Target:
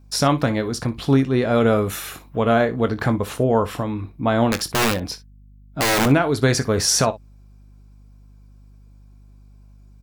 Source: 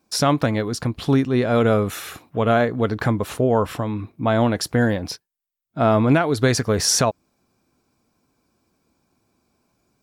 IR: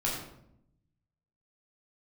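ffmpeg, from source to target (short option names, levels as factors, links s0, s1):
-filter_complex "[0:a]asettb=1/sr,asplit=3[s0][s1][s2];[s0]atrim=end=1.764[s3];[s1]atrim=start=1.76:end=2.4,asetpts=PTS-STARTPTS,afade=t=in:d=0.004:c=qsin,afade=t=out:st=0.636:d=0.004:c=qsin,highshelf=f=9500:g=6[s4];[s2]atrim=start=2.396[s5];[s3][s4]acrossfade=d=0.004:c1=hsin:c2=qsin[s6];[s6][s5]acrossfade=d=0.004:c1=qsin:c2=hsin,asettb=1/sr,asplit=3[s7][s8][s9];[s7]atrim=end=4.494[s10];[s8]atrim=start=4.49:end=6.06,asetpts=PTS-STARTPTS,afade=t=in:d=0.004:c=qsin,afade=t=out:st=1.566:d=0.004:c=qsin,aeval=exprs='(mod(4.47*val(0)+1,2)-1)/4.47':c=same[s11];[s9]atrim=start=6.056[s12];[s10][s11]acrossfade=d=0.004:c1=hsin:c2=qsin[s13];[s13][s12]acrossfade=d=0.004:c1=qsin:c2=hsin,aeval=exprs='val(0)+0.00398*(sin(2*PI*50*n/s)+sin(2*PI*2*50*n/s)/2+sin(2*PI*3*50*n/s)/3+sin(2*PI*4*50*n/s)/4+sin(2*PI*5*50*n/s)/5)':c=same,aecho=1:1:22|61:0.251|0.141"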